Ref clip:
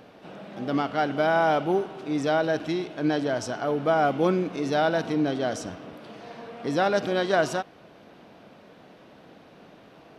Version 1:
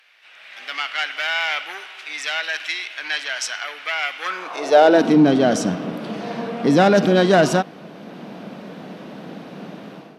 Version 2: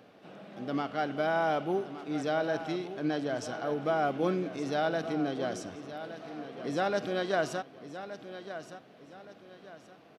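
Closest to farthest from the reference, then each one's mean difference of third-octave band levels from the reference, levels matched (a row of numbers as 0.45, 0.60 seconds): 2, 1; 2.5, 8.5 decibels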